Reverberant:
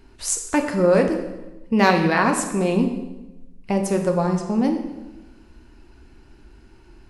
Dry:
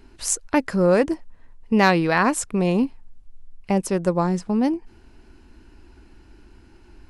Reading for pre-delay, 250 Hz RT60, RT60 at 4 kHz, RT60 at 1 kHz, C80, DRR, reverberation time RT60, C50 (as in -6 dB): 3 ms, 1.3 s, 0.85 s, 0.95 s, 9.5 dB, 3.5 dB, 1.0 s, 7.5 dB